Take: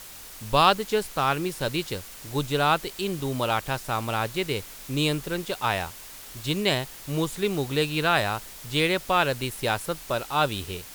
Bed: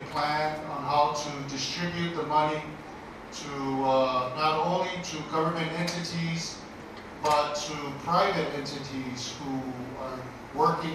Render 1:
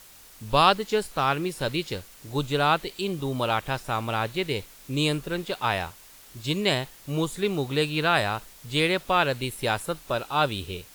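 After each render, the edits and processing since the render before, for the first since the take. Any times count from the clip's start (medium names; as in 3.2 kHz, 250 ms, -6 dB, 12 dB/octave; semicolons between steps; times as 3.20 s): noise print and reduce 7 dB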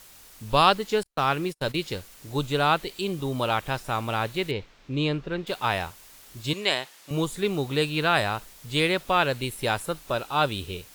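1.03–1.82 s: gate -34 dBFS, range -40 dB; 4.51–5.47 s: distance through air 190 m; 6.53–7.11 s: frequency weighting A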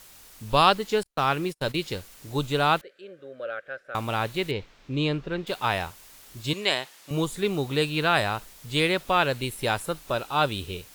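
2.81–3.95 s: two resonant band-passes 920 Hz, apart 1.5 oct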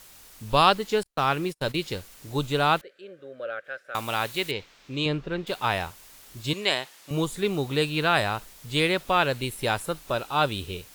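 3.64–5.06 s: tilt EQ +2 dB/octave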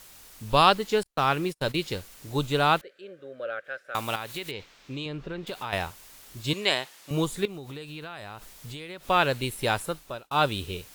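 4.15–5.73 s: compression 4:1, threshold -31 dBFS; 7.45–9.10 s: compression 12:1, threshold -35 dBFS; 9.81–10.31 s: fade out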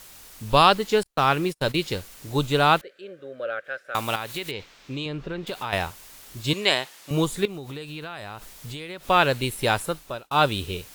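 trim +3.5 dB; peak limiter -3 dBFS, peak gain reduction 2 dB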